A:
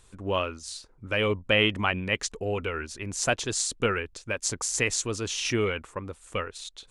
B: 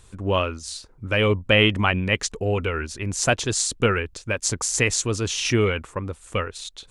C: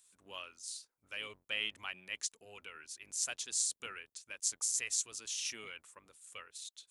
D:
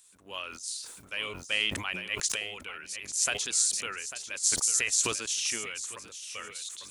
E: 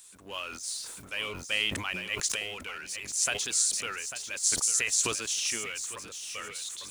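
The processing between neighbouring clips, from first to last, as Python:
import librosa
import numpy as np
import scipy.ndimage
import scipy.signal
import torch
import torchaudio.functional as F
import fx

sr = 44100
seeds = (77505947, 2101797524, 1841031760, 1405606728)

y1 = fx.peak_eq(x, sr, hz=88.0, db=5.0, octaves=2.4)
y1 = F.gain(torch.from_numpy(y1), 4.5).numpy()
y2 = fx.octave_divider(y1, sr, octaves=1, level_db=0.0)
y2 = np.diff(y2, prepend=0.0)
y2 = F.gain(torch.from_numpy(y2), -8.5).numpy()
y3 = fx.echo_feedback(y2, sr, ms=846, feedback_pct=16, wet_db=-12.0)
y3 = fx.sustainer(y3, sr, db_per_s=55.0)
y3 = F.gain(torch.from_numpy(y3), 7.5).numpy()
y4 = fx.law_mismatch(y3, sr, coded='mu')
y4 = F.gain(torch.from_numpy(y4), -1.0).numpy()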